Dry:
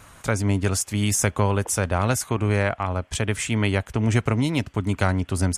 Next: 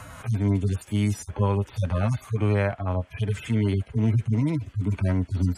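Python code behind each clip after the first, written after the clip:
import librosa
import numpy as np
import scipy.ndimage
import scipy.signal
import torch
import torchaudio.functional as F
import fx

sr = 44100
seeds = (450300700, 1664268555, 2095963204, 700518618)

y = fx.hpss_only(x, sr, part='harmonic')
y = fx.band_squash(y, sr, depth_pct=40)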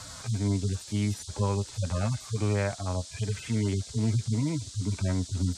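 y = fx.dmg_noise_band(x, sr, seeds[0], low_hz=3500.0, high_hz=8600.0, level_db=-41.0)
y = y * librosa.db_to_amplitude(-4.5)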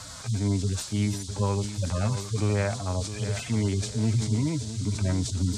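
y = fx.echo_feedback(x, sr, ms=664, feedback_pct=33, wet_db=-12)
y = fx.sustainer(y, sr, db_per_s=100.0)
y = y * librosa.db_to_amplitude(1.5)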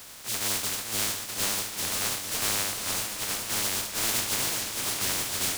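y = fx.spec_flatten(x, sr, power=0.11)
y = fx.echo_warbled(y, sr, ms=439, feedback_pct=66, rate_hz=2.8, cents=198, wet_db=-7.0)
y = y * librosa.db_to_amplitude(-3.5)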